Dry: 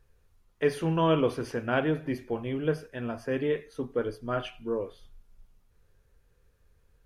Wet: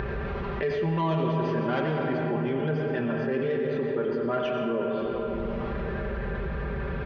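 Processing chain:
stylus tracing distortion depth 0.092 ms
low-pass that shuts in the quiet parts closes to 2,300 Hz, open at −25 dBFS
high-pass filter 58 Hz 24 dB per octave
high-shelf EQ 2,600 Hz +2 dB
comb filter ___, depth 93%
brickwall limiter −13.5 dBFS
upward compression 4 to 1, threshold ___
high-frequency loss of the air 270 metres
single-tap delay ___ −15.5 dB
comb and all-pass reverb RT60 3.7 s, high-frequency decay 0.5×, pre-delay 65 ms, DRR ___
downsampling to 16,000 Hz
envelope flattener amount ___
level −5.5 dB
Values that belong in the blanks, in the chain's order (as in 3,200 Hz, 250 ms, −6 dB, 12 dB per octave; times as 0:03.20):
5.1 ms, −27 dBFS, 91 ms, 2.5 dB, 70%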